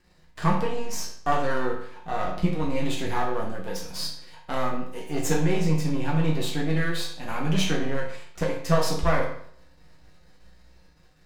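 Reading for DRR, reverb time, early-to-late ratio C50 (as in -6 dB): -4.5 dB, 0.60 s, 5.0 dB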